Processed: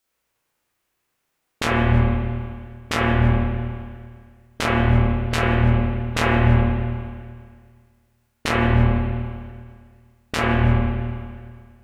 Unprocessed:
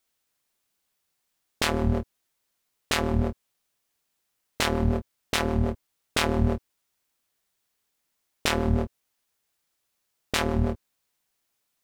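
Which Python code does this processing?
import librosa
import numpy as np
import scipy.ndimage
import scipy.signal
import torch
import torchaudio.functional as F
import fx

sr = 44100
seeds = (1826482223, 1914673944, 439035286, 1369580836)

y = fx.rev_spring(x, sr, rt60_s=1.9, pass_ms=(34, 50), chirp_ms=50, drr_db=-7.0)
y = fx.formant_shift(y, sr, semitones=-5)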